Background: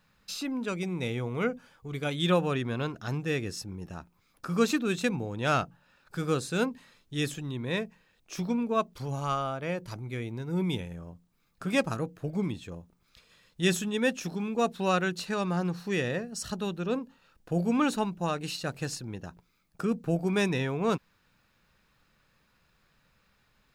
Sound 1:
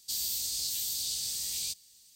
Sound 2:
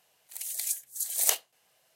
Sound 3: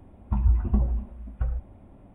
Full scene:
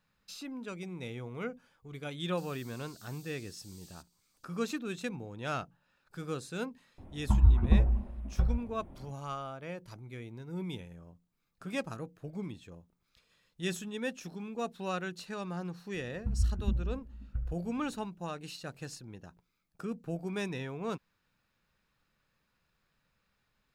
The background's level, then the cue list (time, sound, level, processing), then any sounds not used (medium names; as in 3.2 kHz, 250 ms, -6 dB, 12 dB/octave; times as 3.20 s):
background -9 dB
2.29 s: add 1 -17 dB + compression, threshold -36 dBFS
6.98 s: add 3 -0.5 dB
15.94 s: add 3 -8 dB + FFT filter 240 Hz 0 dB, 980 Hz -19 dB, 1.4 kHz -6 dB
not used: 2